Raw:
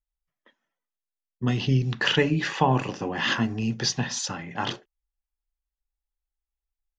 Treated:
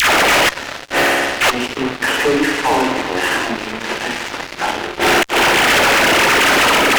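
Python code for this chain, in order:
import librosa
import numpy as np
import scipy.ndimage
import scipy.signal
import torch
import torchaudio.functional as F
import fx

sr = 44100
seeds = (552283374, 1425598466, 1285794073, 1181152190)

p1 = fx.delta_mod(x, sr, bps=16000, step_db=-26.5)
p2 = scipy.signal.sosfilt(scipy.signal.butter(4, 290.0, 'highpass', fs=sr, output='sos'), p1)
p3 = fx.dispersion(p2, sr, late='lows', ms=115.0, hz=620.0)
p4 = p3 + fx.room_flutter(p3, sr, wall_m=10.4, rt60_s=0.41, dry=0)
p5 = fx.rev_spring(p4, sr, rt60_s=1.9, pass_ms=(46,), chirp_ms=80, drr_db=6.5)
p6 = fx.gate_flip(p5, sr, shuts_db=-26.0, range_db=-25)
p7 = fx.notch(p6, sr, hz=1100.0, q=14.0)
p8 = fx.fuzz(p7, sr, gain_db=51.0, gate_db=-57.0)
y = p8 * librosa.db_to_amplitude(2.5)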